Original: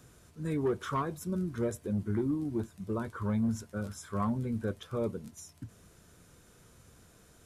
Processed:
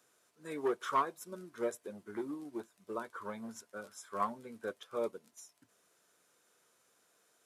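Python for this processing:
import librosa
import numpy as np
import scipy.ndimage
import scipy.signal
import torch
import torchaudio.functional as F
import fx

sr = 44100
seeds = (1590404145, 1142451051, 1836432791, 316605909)

y = scipy.signal.sosfilt(scipy.signal.butter(2, 490.0, 'highpass', fs=sr, output='sos'), x)
y = fx.upward_expand(y, sr, threshold_db=-55.0, expansion=1.5)
y = y * librosa.db_to_amplitude(4.0)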